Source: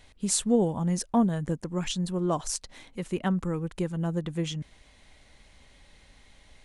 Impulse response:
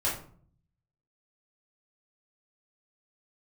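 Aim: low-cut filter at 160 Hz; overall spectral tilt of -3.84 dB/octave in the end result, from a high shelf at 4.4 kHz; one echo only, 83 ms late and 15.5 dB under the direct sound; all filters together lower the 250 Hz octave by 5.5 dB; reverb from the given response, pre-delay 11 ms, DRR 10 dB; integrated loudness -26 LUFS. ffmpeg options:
-filter_complex "[0:a]highpass=160,equalizer=f=250:t=o:g=-6,highshelf=f=4400:g=4.5,aecho=1:1:83:0.168,asplit=2[s0][s1];[1:a]atrim=start_sample=2205,adelay=11[s2];[s1][s2]afir=irnorm=-1:irlink=0,volume=0.119[s3];[s0][s3]amix=inputs=2:normalize=0,volume=1.5"

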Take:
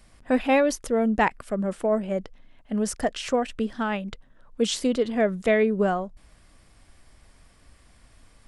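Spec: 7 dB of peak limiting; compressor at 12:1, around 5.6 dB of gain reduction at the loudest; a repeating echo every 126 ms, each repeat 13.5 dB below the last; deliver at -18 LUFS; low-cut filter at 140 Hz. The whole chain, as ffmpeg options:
-af "highpass=140,acompressor=threshold=0.0794:ratio=12,alimiter=limit=0.0891:level=0:latency=1,aecho=1:1:126|252:0.211|0.0444,volume=4.22"

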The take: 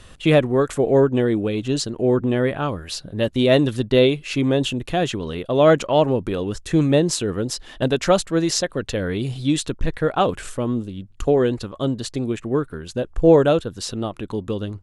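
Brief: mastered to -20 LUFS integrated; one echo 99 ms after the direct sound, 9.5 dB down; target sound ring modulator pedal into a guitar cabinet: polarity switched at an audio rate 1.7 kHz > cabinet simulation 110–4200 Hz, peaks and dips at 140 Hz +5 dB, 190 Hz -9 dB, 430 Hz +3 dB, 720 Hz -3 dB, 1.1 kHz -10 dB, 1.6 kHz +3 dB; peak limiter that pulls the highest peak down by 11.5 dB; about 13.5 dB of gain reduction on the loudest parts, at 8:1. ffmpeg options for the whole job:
-af "acompressor=threshold=0.0708:ratio=8,alimiter=limit=0.0841:level=0:latency=1,aecho=1:1:99:0.335,aeval=exprs='val(0)*sgn(sin(2*PI*1700*n/s))':c=same,highpass=110,equalizer=f=140:t=q:w=4:g=5,equalizer=f=190:t=q:w=4:g=-9,equalizer=f=430:t=q:w=4:g=3,equalizer=f=720:t=q:w=4:g=-3,equalizer=f=1100:t=q:w=4:g=-10,equalizer=f=1600:t=q:w=4:g=3,lowpass=f=4200:w=0.5412,lowpass=f=4200:w=1.3066,volume=2.82"

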